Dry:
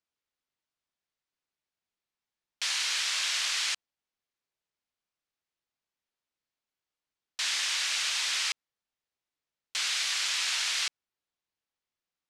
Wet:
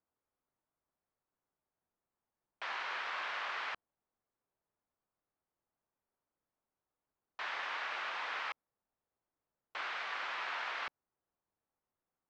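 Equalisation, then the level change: Chebyshev low-pass 1000 Hz, order 2; air absorption 58 m; +6.0 dB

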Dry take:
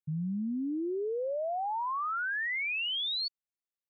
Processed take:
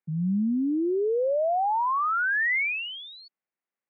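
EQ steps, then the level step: Chebyshev band-pass 180–2200 Hz, order 3; +8.5 dB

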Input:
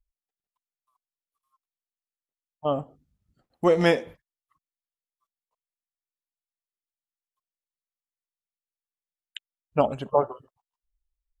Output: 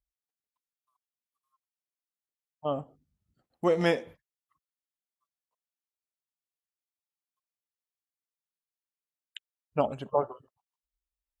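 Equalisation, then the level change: HPF 47 Hz; -5.0 dB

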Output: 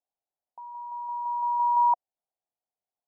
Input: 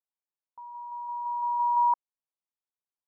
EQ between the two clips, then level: synth low-pass 720 Hz, resonance Q 4.9; 0.0 dB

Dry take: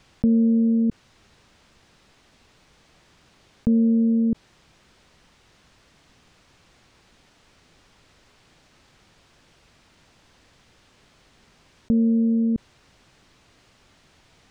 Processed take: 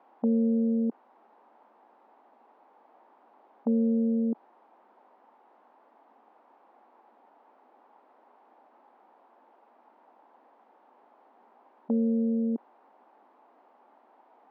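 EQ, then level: brick-wall FIR high-pass 210 Hz; synth low-pass 850 Hz, resonance Q 3.6; low shelf 440 Hz -7 dB; 0.0 dB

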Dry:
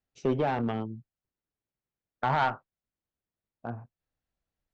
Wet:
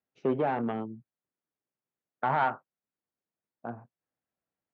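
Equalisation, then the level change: BPF 170–2200 Hz; 0.0 dB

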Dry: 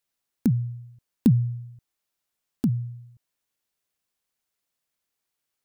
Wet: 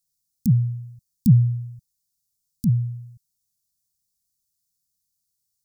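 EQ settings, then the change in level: inverse Chebyshev band-stop 410–2200 Hz, stop band 50 dB; +6.5 dB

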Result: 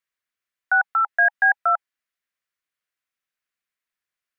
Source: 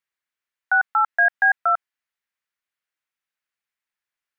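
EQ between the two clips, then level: Butterworth band-stop 870 Hz, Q 7.9; 0.0 dB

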